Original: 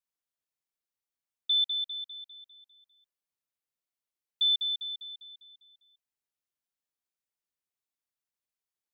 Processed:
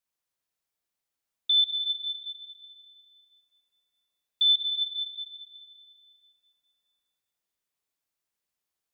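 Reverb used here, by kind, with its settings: plate-style reverb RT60 2.8 s, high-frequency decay 0.75×, DRR 1.5 dB; gain +3.5 dB

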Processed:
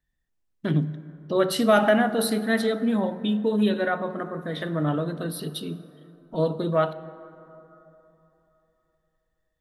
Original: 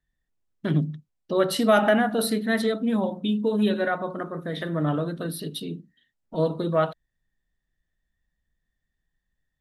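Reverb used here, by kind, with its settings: plate-style reverb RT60 3.3 s, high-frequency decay 0.4×, DRR 14 dB

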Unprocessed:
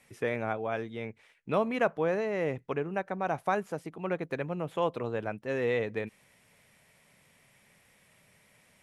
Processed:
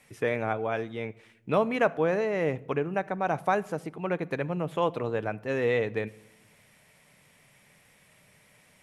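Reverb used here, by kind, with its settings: shoebox room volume 2800 m³, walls furnished, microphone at 0.44 m; gain +3 dB

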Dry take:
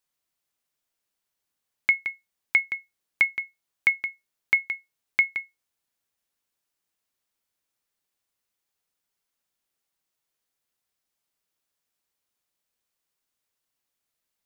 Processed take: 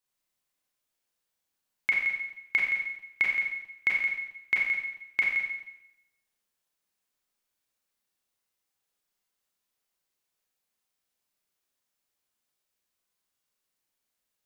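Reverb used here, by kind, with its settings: Schroeder reverb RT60 0.85 s, combs from 30 ms, DRR -3 dB; gain -5 dB

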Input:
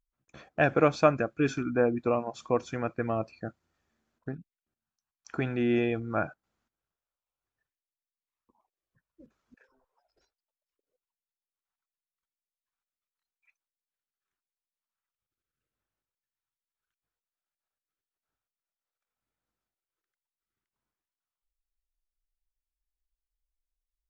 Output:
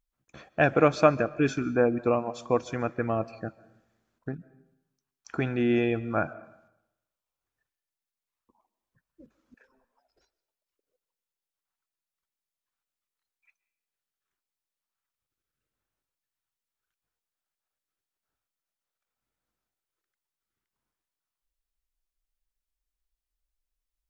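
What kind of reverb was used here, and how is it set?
digital reverb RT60 0.85 s, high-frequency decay 0.8×, pre-delay 0.1 s, DRR 19 dB; gain +2 dB

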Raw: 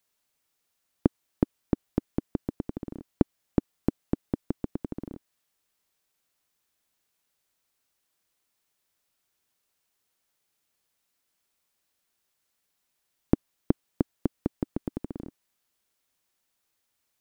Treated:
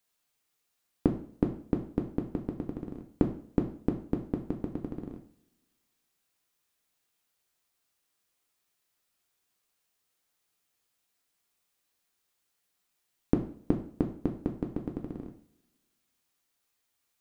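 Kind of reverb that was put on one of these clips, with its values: two-slope reverb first 0.46 s, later 1.8 s, from -27 dB, DRR 2 dB; gain -3 dB

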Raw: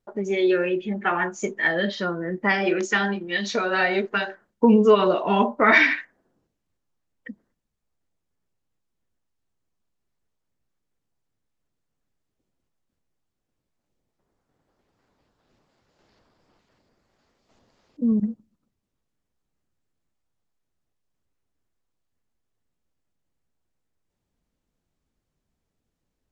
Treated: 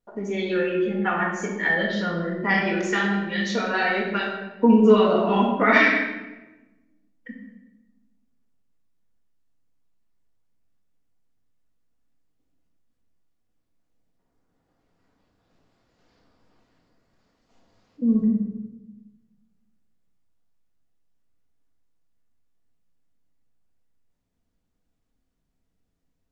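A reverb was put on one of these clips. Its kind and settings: shoebox room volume 590 m³, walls mixed, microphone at 1.8 m; gain -4.5 dB

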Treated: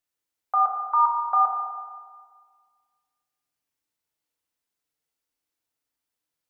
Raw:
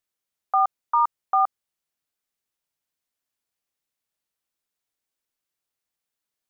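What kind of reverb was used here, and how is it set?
FDN reverb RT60 1.7 s, low-frequency decay 1.1×, high-frequency decay 0.6×, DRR -1 dB; gain -3 dB

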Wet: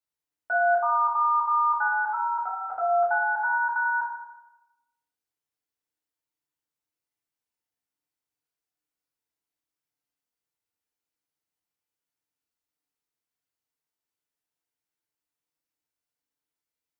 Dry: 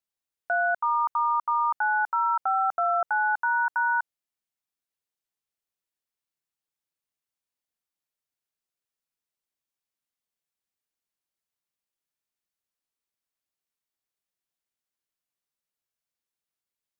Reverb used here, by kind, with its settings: FDN reverb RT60 0.98 s, low-frequency decay 0.95×, high-frequency decay 0.5×, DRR -6.5 dB; gain -7 dB

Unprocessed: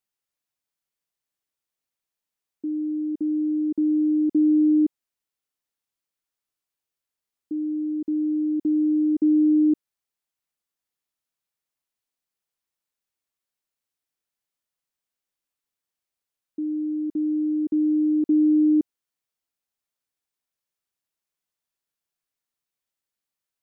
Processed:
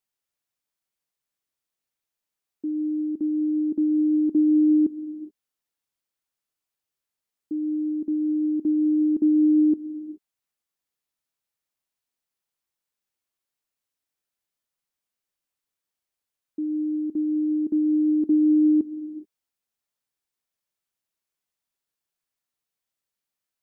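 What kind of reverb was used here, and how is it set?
non-linear reverb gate 0.45 s flat, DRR 11.5 dB

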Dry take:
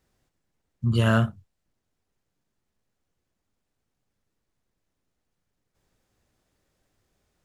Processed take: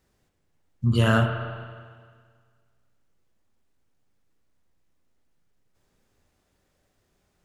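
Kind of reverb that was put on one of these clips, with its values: spring tank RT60 1.8 s, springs 33/38 ms, chirp 60 ms, DRR 4.5 dB; gain +1.5 dB

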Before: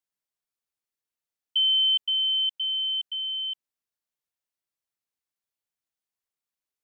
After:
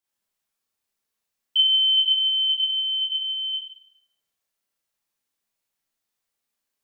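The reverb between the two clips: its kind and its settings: Schroeder reverb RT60 0.7 s, combs from 28 ms, DRR -5.5 dB; gain +2 dB

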